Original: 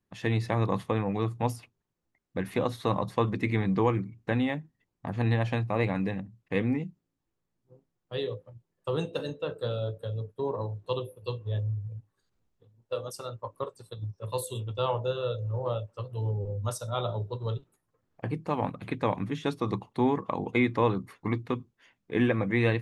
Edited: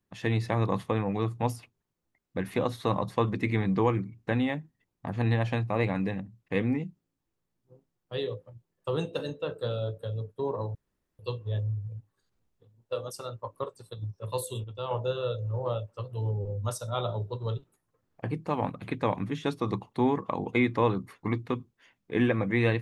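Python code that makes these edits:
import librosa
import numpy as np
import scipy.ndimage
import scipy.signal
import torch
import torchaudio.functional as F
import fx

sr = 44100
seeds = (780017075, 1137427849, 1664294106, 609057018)

y = fx.edit(x, sr, fx.room_tone_fill(start_s=10.75, length_s=0.44),
    fx.clip_gain(start_s=14.64, length_s=0.27, db=-6.5), tone=tone)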